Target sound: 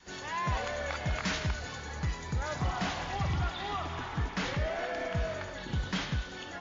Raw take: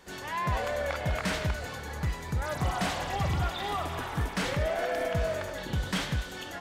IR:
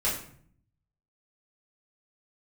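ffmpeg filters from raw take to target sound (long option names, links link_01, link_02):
-af "adynamicequalizer=threshold=0.00501:dfrequency=540:dqfactor=2.1:tfrequency=540:tqfactor=2.1:attack=5:release=100:ratio=0.375:range=3:mode=cutabove:tftype=bell,acontrast=78,asetnsamples=nb_out_samples=441:pad=0,asendcmd='2.58 highshelf g -4.5',highshelf=frequency=6300:gain=6.5,volume=-8.5dB" -ar 16000 -c:a libmp3lame -b:a 32k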